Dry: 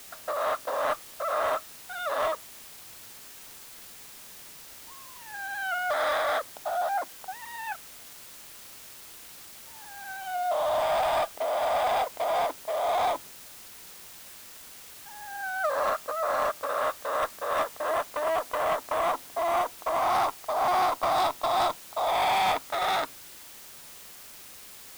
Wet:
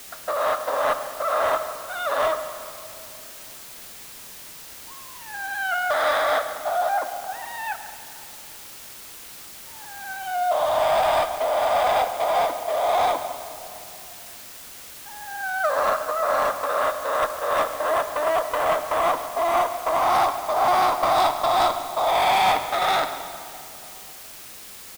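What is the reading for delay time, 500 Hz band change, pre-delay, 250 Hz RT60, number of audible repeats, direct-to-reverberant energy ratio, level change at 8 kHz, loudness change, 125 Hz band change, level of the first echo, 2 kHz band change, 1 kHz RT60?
140 ms, +5.5 dB, 12 ms, 3.3 s, 1, 8.5 dB, +5.5 dB, +5.5 dB, +6.0 dB, -16.5 dB, +5.5 dB, 2.6 s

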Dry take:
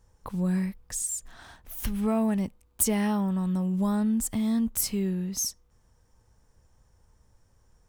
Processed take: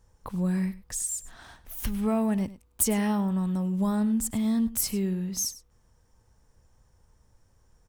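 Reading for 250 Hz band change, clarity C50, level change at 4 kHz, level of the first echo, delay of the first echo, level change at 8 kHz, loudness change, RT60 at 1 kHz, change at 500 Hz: 0.0 dB, no reverb, 0.0 dB, -17.0 dB, 101 ms, 0.0 dB, 0.0 dB, no reverb, 0.0 dB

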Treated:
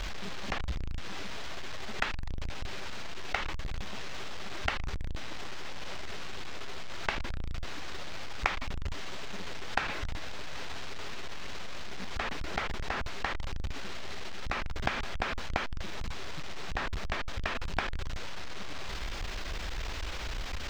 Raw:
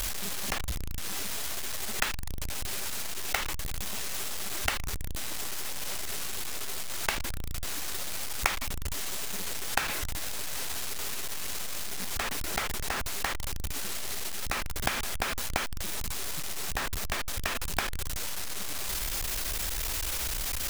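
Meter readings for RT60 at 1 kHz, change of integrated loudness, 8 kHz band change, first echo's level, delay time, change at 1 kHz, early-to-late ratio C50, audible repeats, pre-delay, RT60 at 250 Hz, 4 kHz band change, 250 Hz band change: no reverb, -5.5 dB, -16.5 dB, no echo, no echo, -1.0 dB, no reverb, no echo, no reverb, no reverb, -5.5 dB, 0.0 dB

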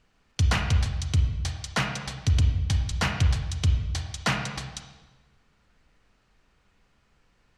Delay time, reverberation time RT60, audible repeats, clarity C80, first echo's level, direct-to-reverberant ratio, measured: no echo, 1.3 s, no echo, 7.0 dB, no echo, 4.0 dB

